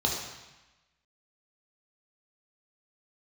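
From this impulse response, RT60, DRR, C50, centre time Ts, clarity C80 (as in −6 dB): 1.0 s, −2.0 dB, 3.0 dB, 52 ms, 5.0 dB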